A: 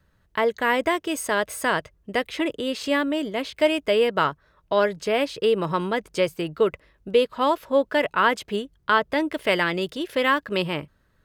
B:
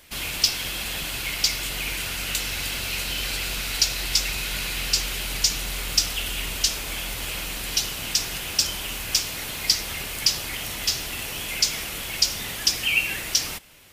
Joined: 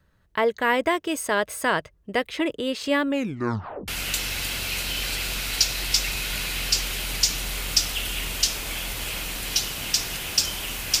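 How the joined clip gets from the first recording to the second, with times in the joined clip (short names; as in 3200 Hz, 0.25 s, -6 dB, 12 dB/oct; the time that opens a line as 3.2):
A
3.08 tape stop 0.80 s
3.88 switch to B from 2.09 s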